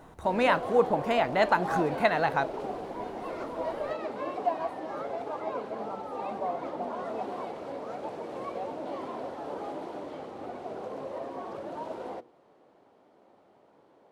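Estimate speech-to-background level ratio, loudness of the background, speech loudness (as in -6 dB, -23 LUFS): 9.0 dB, -36.0 LUFS, -27.0 LUFS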